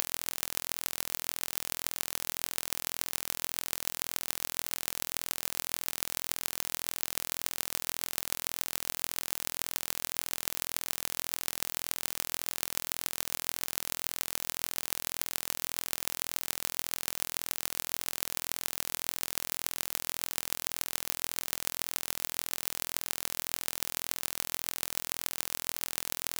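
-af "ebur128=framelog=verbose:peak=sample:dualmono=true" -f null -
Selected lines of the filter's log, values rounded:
Integrated loudness:
  I:         -30.0 LUFS
  Threshold: -40.0 LUFS
Loudness range:
  LRA:         0.1 LU
  Threshold: -50.0 LUFS
  LRA low:   -30.1 LUFS
  LRA high:  -30.0 LUFS
Sample peak:
  Peak:       -1.6 dBFS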